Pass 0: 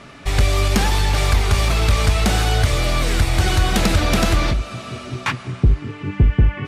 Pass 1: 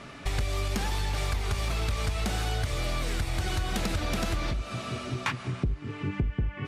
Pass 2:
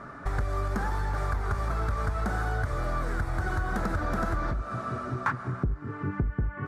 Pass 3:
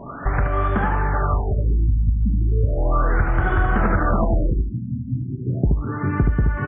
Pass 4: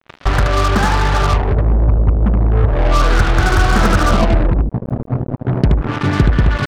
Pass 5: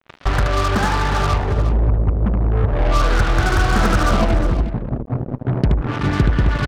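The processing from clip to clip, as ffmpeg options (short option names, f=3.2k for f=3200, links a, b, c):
-af "acompressor=threshold=-23dB:ratio=5,volume=-3.5dB"
-af "highshelf=f=2k:t=q:w=3:g=-11"
-af "aecho=1:1:75:0.562,afftfilt=real='re*lt(b*sr/1024,280*pow(3600/280,0.5+0.5*sin(2*PI*0.35*pts/sr)))':imag='im*lt(b*sr/1024,280*pow(3600/280,0.5+0.5*sin(2*PI*0.35*pts/sr)))':win_size=1024:overlap=0.75,volume=9dB"
-af "acrusher=bits=3:mix=0:aa=0.5,volume=6dB"
-af "aecho=1:1:357:0.237,volume=-3.5dB"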